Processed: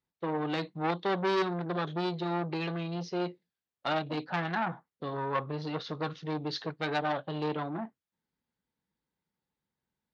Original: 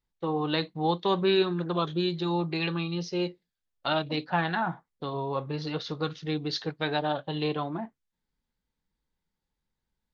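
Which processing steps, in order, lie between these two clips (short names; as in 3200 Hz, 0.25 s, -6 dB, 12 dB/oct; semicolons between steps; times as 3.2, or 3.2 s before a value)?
5.15–7.19 dynamic EQ 1100 Hz, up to +7 dB, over -47 dBFS, Q 2.7; HPF 110 Hz 12 dB/oct; high shelf 4100 Hz -9 dB; core saturation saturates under 1600 Hz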